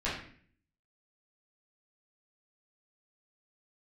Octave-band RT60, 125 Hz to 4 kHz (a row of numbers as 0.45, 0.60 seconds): 0.75, 0.70, 0.55, 0.45, 0.55, 0.45 seconds